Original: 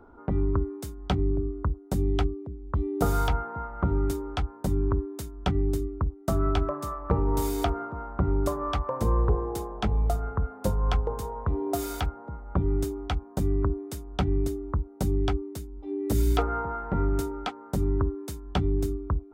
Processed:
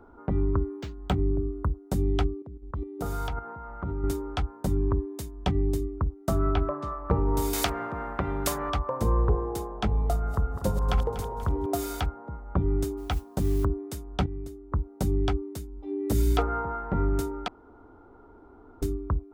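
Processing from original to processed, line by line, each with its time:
0.71–1.74 s: decimation joined by straight lines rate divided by 4×
2.42–4.04 s: level held to a coarse grid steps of 10 dB
4.77–5.98 s: band-stop 1.4 kHz, Q 5.9
6.50–6.99 s: low-pass 3.2 kHz
7.53–8.70 s: spectrum-flattening compressor 2:1
9.87–11.66 s: backward echo that repeats 121 ms, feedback 68%, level -10 dB
12.97–13.65 s: modulation noise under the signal 26 dB
14.26–14.72 s: gain -10.5 dB
17.48–18.82 s: room tone

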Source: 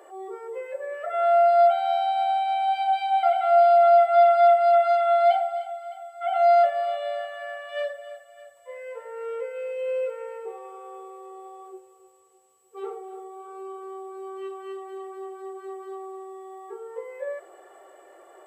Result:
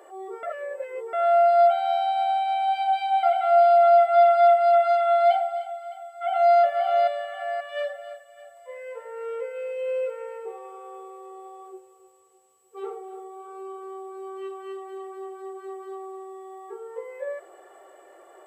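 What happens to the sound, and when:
0.43–1.13 s: reverse
6.05–6.54 s: echo throw 530 ms, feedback 30%, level -3 dB

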